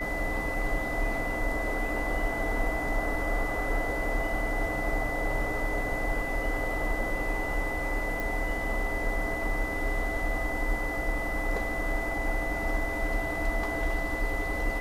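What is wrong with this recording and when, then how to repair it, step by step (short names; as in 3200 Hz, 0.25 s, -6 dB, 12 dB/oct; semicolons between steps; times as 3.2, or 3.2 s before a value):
tone 2000 Hz -33 dBFS
8.2 pop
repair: de-click; notch 2000 Hz, Q 30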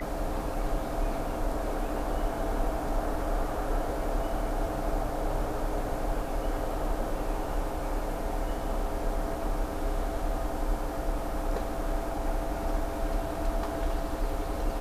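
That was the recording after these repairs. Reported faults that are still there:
none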